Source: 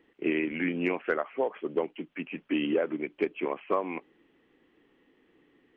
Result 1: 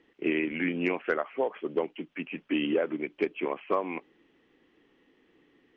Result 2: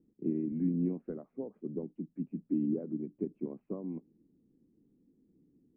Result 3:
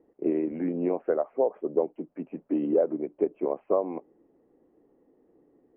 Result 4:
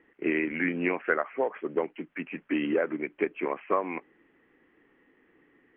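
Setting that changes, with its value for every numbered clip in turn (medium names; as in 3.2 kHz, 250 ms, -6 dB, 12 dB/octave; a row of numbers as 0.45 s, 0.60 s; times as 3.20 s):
resonant low-pass, frequency: 5.8 kHz, 200 Hz, 640 Hz, 1.9 kHz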